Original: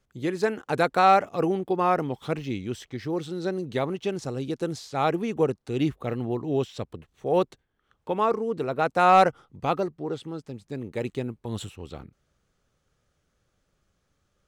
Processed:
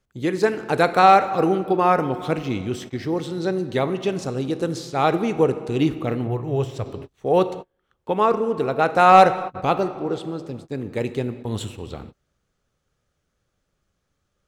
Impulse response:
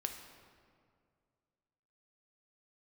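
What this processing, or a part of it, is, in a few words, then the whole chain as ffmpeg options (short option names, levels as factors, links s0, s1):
keyed gated reverb: -filter_complex "[0:a]asplit=3[s0][s1][s2];[1:a]atrim=start_sample=2205[s3];[s1][s3]afir=irnorm=-1:irlink=0[s4];[s2]apad=whole_len=638184[s5];[s4][s5]sidechaingate=range=0.00891:threshold=0.00562:ratio=16:detection=peak,volume=1.26[s6];[s0][s6]amix=inputs=2:normalize=0,asettb=1/sr,asplit=3[s7][s8][s9];[s7]atrim=end=6.274[s10];[s8]atrim=start=6.27:end=6.86,asetpts=PTS-STARTPTS,afade=t=in:d=0.004:c=qsin,afade=t=out:st=0.586:d=0.004:c=qsin,equalizer=f=125:t=o:w=1:g=6,equalizer=f=250:t=o:w=1:g=-11,equalizer=f=4000:t=o:w=1:g=-7[s11];[s9]atrim=start=6.856[s12];[s10][s11]acrossfade=d=0.004:c1=hsin:c2=qsin[s13];[s13][s12]acrossfade=d=0.004:c1=qsin:c2=hsin,volume=0.841"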